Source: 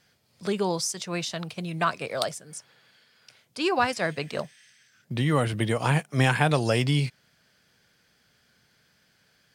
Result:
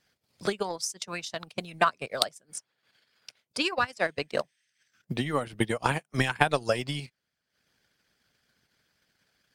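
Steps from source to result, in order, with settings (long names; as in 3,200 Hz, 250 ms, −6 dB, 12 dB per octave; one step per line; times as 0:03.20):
transient designer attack +10 dB, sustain −11 dB
harmonic and percussive parts rebalanced harmonic −10 dB
level −3.5 dB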